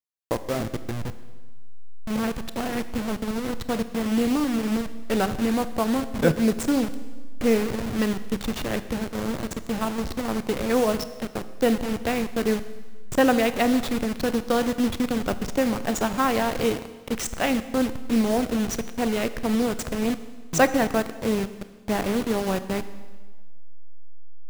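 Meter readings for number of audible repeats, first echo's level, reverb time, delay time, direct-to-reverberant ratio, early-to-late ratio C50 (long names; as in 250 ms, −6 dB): no echo audible, no echo audible, 1.4 s, no echo audible, 12.0 dB, 13.5 dB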